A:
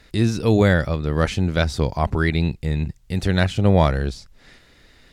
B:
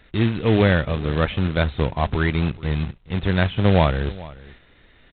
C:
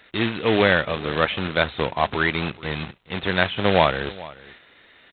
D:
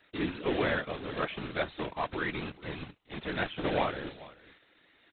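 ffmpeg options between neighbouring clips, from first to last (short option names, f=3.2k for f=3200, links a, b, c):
-af "aresample=8000,acrusher=bits=3:mode=log:mix=0:aa=0.000001,aresample=44100,aecho=1:1:428:0.106,volume=-1dB"
-af "highpass=f=620:p=1,volume=5dB"
-filter_complex "[0:a]afftfilt=real='hypot(re,im)*cos(2*PI*random(0))':imag='hypot(re,im)*sin(2*PI*random(1))':win_size=512:overlap=0.75,equalizer=f=310:w=3.8:g=5.5,acrossover=split=4000[a][b];[b]acompressor=threshold=-53dB:ratio=4:attack=1:release=60[c];[a][c]amix=inputs=2:normalize=0,volume=-6dB"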